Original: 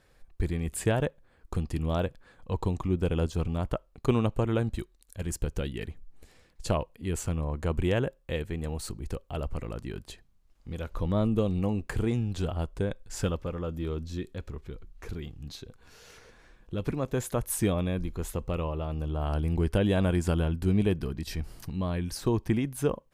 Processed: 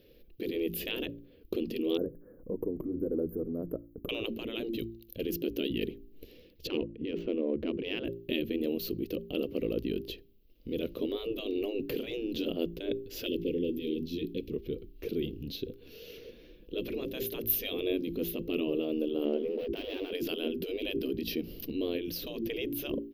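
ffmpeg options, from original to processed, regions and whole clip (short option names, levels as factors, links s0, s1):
-filter_complex "[0:a]asettb=1/sr,asplit=3[s0][s1][s2];[s0]atrim=end=1.974[s3];[s1]atrim=start=1.97:end=4.09,asetpts=PTS-STARTPTS,afade=t=in:d=0.004:c=qsin,afade=t=out:st=2.116:d=0.004:c=qsin,asuperstop=centerf=4000:order=12:qfactor=0.54,acompressor=threshold=0.0178:ratio=2.5:attack=3.2:release=140:knee=1:detection=peak[s4];[s2]atrim=start=4.086[s5];[s3][s4]acrossfade=d=0.004:c1=hsin:c2=qsin[s6];[s6][s5]acrossfade=d=0.004:c1=qsin:c2=hsin,asettb=1/sr,asplit=3[s7][s8][s9];[s7]atrim=end=6.674[s10];[s8]atrim=start=6.67:end=8.05,asetpts=PTS-STARTPTS,afade=t=in:d=0.004:c=qsin,afade=t=out:st=1.376:d=0.004:c=qsin,adynamicsmooth=sensitivity=5.5:basefreq=2300,bass=f=250:g=-1,treble=f=4000:g=-12[s11];[s9]atrim=start=8.046[s12];[s10][s11]acrossfade=d=0.004:c1=hsin:c2=qsin[s13];[s13][s12]acrossfade=d=0.004:c1=qsin:c2=hsin,asettb=1/sr,asplit=3[s14][s15][s16];[s14]atrim=end=13.264[s17];[s15]atrim=start=13.26:end=14.52,asetpts=PTS-STARTPTS,afade=t=in:d=0.004:c=qsin,afade=t=out:st=1.256:d=0.004:c=qsin,asoftclip=type=hard:threshold=0.0841,asuperstop=centerf=960:order=8:qfactor=0.63[s18];[s16]atrim=start=14.516[s19];[s17][s18]acrossfade=d=0.004:c1=hsin:c2=qsin[s20];[s20][s19]acrossfade=d=0.004:c1=qsin:c2=hsin,asettb=1/sr,asplit=3[s21][s22][s23];[s21]atrim=end=19.254[s24];[s22]atrim=start=19.25:end=20.12,asetpts=PTS-STARTPTS,afade=t=in:d=0.004:c=qsin,afade=t=out:st=0.866:d=0.004:c=qsin,lowpass=f=2100:p=1,tiltshelf=f=680:g=4.5,aeval=exprs='sgn(val(0))*max(abs(val(0))-0.0106,0)':c=same[s25];[s23]atrim=start=20.116[s26];[s24][s25]acrossfade=d=0.004:c1=hsin:c2=qsin[s27];[s27][s26]acrossfade=d=0.004:c1=qsin:c2=hsin,bandreject=f=56.81:t=h:w=4,bandreject=f=113.62:t=h:w=4,bandreject=f=170.43:t=h:w=4,bandreject=f=227.24:t=h:w=4,bandreject=f=284.05:t=h:w=4,bandreject=f=340.86:t=h:w=4,bandreject=f=397.67:t=h:w=4,afftfilt=real='re*lt(hypot(re,im),0.1)':imag='im*lt(hypot(re,im),0.1)':win_size=1024:overlap=0.75,firequalizer=gain_entry='entry(120,0);entry(290,12);entry(480,11);entry(820,-16);entry(1600,-12);entry(2800,8);entry(5800,-4);entry(8200,-25);entry(13000,14)':delay=0.05:min_phase=1"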